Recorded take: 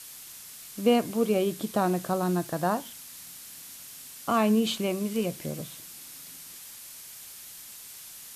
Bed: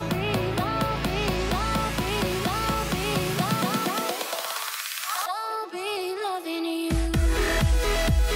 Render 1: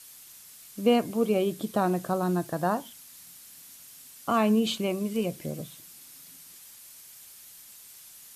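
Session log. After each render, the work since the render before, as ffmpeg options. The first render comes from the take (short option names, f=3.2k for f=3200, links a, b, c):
-af "afftdn=nr=6:nf=-45"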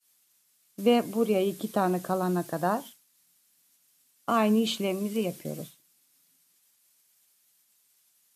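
-af "highpass=140,agate=range=-33dB:threshold=-37dB:ratio=3:detection=peak"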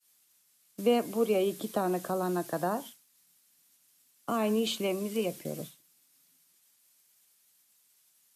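-filter_complex "[0:a]acrossover=split=260|500|6100[a][b][c][d];[a]acompressor=threshold=-40dB:ratio=6[e];[c]alimiter=level_in=1dB:limit=-24dB:level=0:latency=1:release=112,volume=-1dB[f];[e][b][f][d]amix=inputs=4:normalize=0"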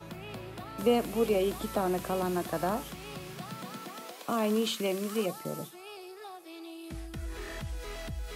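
-filter_complex "[1:a]volume=-16.5dB[a];[0:a][a]amix=inputs=2:normalize=0"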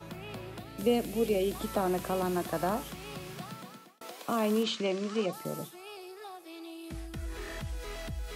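-filter_complex "[0:a]asettb=1/sr,asplit=3[a][b][c];[a]atrim=end=0.594[d];[b]atrim=start=0.59:end=1.55,asetpts=PTS-STARTPTS,afade=t=in:d=0.004:c=qsin,afade=t=out:st=0.956:d=0.004:c=qsin,equalizer=f=1.1k:w=1.4:g=-11[e];[c]atrim=start=1.546[f];[d][e]acrossfade=d=0.004:c1=hsin:c2=qsin[g];[g][f]acrossfade=d=0.004:c1=qsin:c2=hsin,asettb=1/sr,asplit=3[h][i][j];[h]atrim=end=4.634[k];[i]atrim=start=4.63:end=5.33,asetpts=PTS-STARTPTS,afade=t=in:d=0.004:c=qsin,afade=t=out:st=0.696:d=0.004:c=qsin,lowpass=f=6.5k:w=0.5412,lowpass=f=6.5k:w=1.3066[l];[j]atrim=start=5.326[m];[k][l]acrossfade=d=0.004:c1=hsin:c2=qsin[n];[n][m]acrossfade=d=0.004:c1=qsin:c2=hsin,asplit=2[o][p];[o]atrim=end=4.01,asetpts=PTS-STARTPTS,afade=t=out:st=3.39:d=0.62[q];[p]atrim=start=4.01,asetpts=PTS-STARTPTS,afade=t=in:d=0.004:c=hsin[r];[q][r]concat=n=2:v=0:a=1"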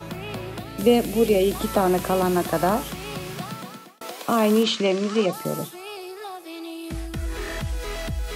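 -af "volume=9.5dB"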